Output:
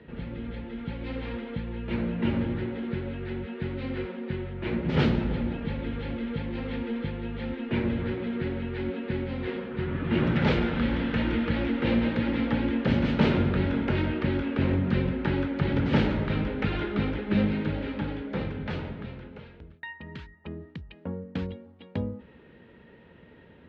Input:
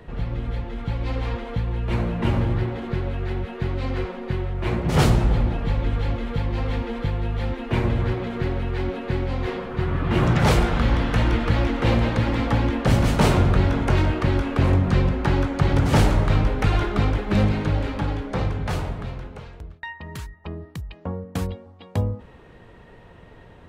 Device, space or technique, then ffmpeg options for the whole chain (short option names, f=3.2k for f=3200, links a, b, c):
guitar cabinet: -af "highpass=86,equalizer=f=110:t=q:w=4:g=-9,equalizer=f=230:t=q:w=4:g=5,equalizer=f=720:t=q:w=4:g=-9,equalizer=f=1.1k:t=q:w=4:g=-9,lowpass=f=3.7k:w=0.5412,lowpass=f=3.7k:w=1.3066,volume=-3.5dB"